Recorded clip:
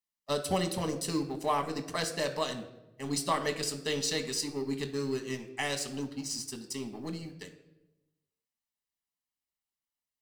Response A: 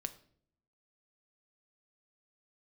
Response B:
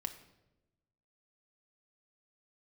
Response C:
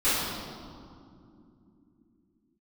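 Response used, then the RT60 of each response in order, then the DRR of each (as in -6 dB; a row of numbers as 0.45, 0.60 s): B; 0.60, 1.0, 2.8 s; 8.5, 5.0, -17.5 dB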